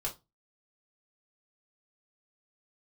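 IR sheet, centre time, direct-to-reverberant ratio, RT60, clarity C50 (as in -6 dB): 13 ms, -3.5 dB, 0.25 s, 14.5 dB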